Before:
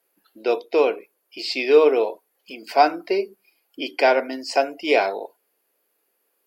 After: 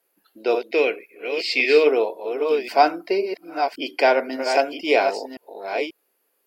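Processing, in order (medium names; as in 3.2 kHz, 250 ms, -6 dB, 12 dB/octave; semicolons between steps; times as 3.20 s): chunks repeated in reverse 537 ms, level -7 dB; 0.71–1.87 s: graphic EQ 125/1000/2000 Hz -7/-11/+11 dB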